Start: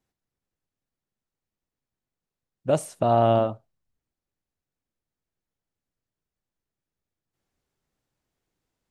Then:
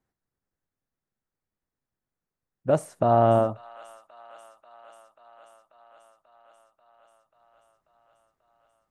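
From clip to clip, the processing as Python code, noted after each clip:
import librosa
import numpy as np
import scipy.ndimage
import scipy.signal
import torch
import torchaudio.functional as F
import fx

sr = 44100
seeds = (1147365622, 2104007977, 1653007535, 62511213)

y = fx.high_shelf_res(x, sr, hz=2200.0, db=-6.0, q=1.5)
y = fx.echo_wet_highpass(y, sr, ms=538, feedback_pct=75, hz=1600.0, wet_db=-12.5)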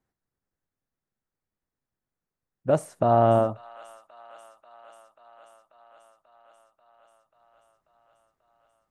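y = x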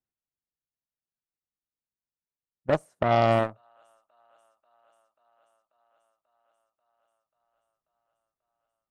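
y = fx.cheby_harmonics(x, sr, harmonics=(7, 8), levels_db=(-19, -43), full_scale_db=-7.5)
y = y * librosa.db_to_amplitude(-1.5)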